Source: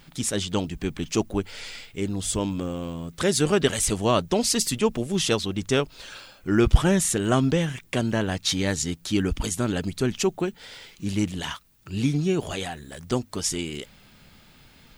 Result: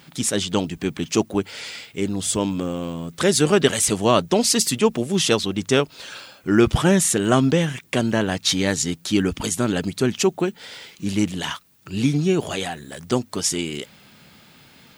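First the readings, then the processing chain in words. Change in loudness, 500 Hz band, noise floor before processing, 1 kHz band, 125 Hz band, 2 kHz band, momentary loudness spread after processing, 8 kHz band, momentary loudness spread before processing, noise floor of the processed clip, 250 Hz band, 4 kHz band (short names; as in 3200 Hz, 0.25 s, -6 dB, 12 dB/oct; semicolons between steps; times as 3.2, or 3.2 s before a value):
+4.0 dB, +4.5 dB, -54 dBFS, +4.5 dB, +2.0 dB, +4.5 dB, 13 LU, +4.5 dB, 13 LU, -51 dBFS, +4.0 dB, +4.5 dB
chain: HPF 120 Hz 12 dB/oct; gain +4.5 dB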